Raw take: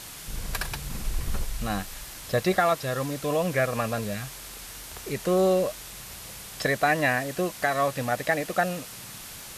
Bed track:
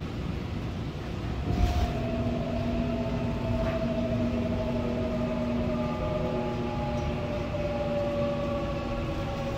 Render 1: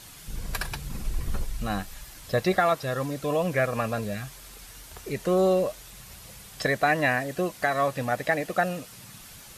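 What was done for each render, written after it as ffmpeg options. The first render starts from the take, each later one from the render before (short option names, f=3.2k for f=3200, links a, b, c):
-af "afftdn=nr=7:nf=-42"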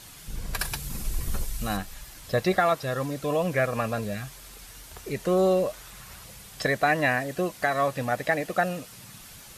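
-filter_complex "[0:a]asettb=1/sr,asplit=3[a][b][c];[a]atrim=end=0.594[d];[b]atrim=start=0.59:end=1.77,asetpts=PTS-STARTPTS,afade=t=in:d=0.004:c=qsin,afade=t=out:st=1.176:d=0.004:c=qsin,aemphasis=mode=production:type=cd[e];[c]atrim=start=1.766[f];[d][e]acrossfade=d=0.004:c1=hsin:c2=qsin[g];[g][f]acrossfade=d=0.004:c1=qsin:c2=hsin,asettb=1/sr,asplit=3[h][i][j];[h]atrim=end=5.734[k];[i]atrim=start=5.73:end=6.24,asetpts=PTS-STARTPTS,afade=t=in:d=0.004:c=qsin,afade=t=out:st=0.506:d=0.004:c=qsin,equalizer=f=1.3k:t=o:w=1.3:g=6.5[l];[j]atrim=start=6.236[m];[k][l]acrossfade=d=0.004:c1=hsin:c2=qsin[n];[n][m]acrossfade=d=0.004:c1=qsin:c2=hsin"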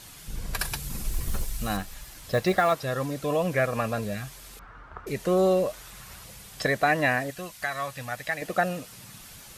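-filter_complex "[0:a]asettb=1/sr,asplit=3[a][b][c];[a]atrim=end=1.084[d];[b]atrim=start=1.08:end=2.76,asetpts=PTS-STARTPTS,afade=t=in:d=0.004:c=qsin,afade=t=out:st=1.676:d=0.004:c=qsin,acrusher=bits=7:mode=log:mix=0:aa=0.000001[e];[c]atrim=start=2.756[f];[d][e]acrossfade=d=0.004:c1=hsin:c2=qsin[g];[g][f]acrossfade=d=0.004:c1=qsin:c2=hsin,asettb=1/sr,asplit=3[h][i][j];[h]atrim=end=4.594[k];[i]atrim=start=4.59:end=5.07,asetpts=PTS-STARTPTS,afade=t=in:d=0.004:c=qsin,afade=t=out:st=0.476:d=0.004:c=qsin,lowpass=f=1.3k:t=q:w=3.9[l];[j]atrim=start=5.066[m];[k][l]acrossfade=d=0.004:c1=hsin:c2=qsin[n];[n][m]acrossfade=d=0.004:c1=qsin:c2=hsin,asettb=1/sr,asplit=3[o][p][q];[o]atrim=end=7.304[r];[p]atrim=start=7.3:end=8.42,asetpts=PTS-STARTPTS,afade=t=in:d=0.004:c=qsin,afade=t=out:st=1.116:d=0.004:c=qsin,equalizer=f=350:t=o:w=2.6:g=-13.5[s];[q]atrim=start=8.416[t];[r][s]acrossfade=d=0.004:c1=hsin:c2=qsin[u];[u][t]acrossfade=d=0.004:c1=qsin:c2=hsin"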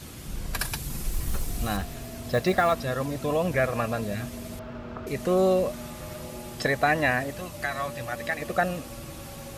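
-filter_complex "[1:a]volume=-10dB[a];[0:a][a]amix=inputs=2:normalize=0"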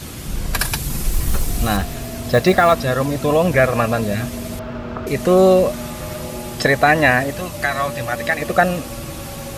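-af "volume=10dB,alimiter=limit=-2dB:level=0:latency=1"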